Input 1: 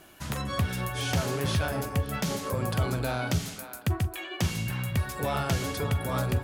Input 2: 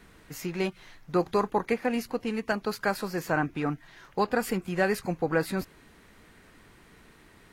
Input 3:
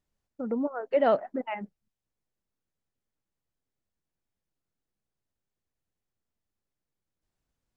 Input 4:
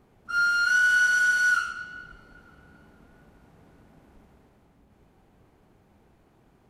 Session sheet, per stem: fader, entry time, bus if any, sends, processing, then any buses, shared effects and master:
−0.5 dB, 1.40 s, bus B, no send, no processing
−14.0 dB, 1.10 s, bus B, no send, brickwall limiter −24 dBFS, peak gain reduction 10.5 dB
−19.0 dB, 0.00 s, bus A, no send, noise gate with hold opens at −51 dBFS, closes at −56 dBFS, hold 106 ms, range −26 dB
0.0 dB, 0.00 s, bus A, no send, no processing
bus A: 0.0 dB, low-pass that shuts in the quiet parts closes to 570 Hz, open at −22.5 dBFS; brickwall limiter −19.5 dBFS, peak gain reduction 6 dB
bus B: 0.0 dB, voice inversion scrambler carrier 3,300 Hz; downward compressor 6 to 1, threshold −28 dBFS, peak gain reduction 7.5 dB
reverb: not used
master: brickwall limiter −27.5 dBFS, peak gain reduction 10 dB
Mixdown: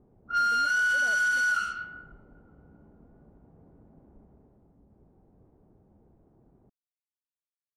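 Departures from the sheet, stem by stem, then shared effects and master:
stem 1: muted
stem 2: muted
master: missing brickwall limiter −27.5 dBFS, peak gain reduction 10 dB

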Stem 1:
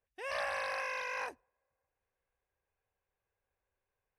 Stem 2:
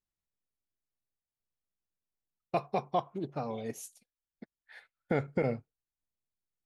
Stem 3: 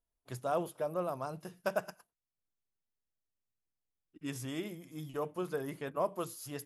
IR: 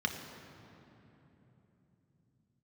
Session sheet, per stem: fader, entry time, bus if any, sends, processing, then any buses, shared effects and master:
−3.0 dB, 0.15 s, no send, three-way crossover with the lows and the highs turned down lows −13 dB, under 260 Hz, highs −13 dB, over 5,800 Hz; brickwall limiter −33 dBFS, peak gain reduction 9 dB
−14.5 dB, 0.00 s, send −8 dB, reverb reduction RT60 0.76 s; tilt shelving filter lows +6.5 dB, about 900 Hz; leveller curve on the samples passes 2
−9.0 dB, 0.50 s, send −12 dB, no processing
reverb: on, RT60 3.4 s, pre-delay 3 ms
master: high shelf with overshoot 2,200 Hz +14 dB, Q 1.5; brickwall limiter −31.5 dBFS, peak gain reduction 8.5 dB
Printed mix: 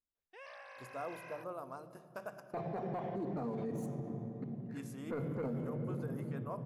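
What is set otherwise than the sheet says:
stem 1 −3.0 dB → −10.0 dB
stem 2 −14.5 dB → −6.5 dB
master: missing high shelf with overshoot 2,200 Hz +14 dB, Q 1.5

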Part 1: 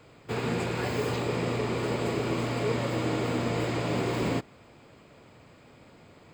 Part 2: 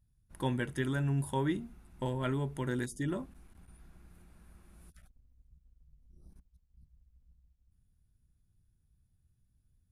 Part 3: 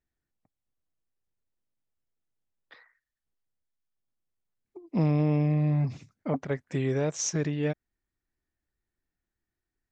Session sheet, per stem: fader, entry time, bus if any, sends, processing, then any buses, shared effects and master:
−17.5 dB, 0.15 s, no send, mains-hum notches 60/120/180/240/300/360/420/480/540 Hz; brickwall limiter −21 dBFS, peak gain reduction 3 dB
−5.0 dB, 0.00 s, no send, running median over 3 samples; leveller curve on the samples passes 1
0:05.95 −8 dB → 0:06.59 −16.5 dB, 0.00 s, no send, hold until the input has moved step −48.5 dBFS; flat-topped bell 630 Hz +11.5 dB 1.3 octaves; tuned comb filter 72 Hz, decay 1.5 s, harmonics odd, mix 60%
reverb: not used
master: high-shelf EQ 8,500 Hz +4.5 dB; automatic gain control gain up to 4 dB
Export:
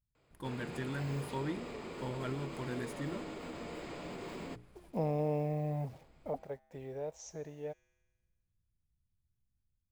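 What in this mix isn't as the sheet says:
stem 2 −5.0 dB → −13.0 dB
master: missing high-shelf EQ 8,500 Hz +4.5 dB

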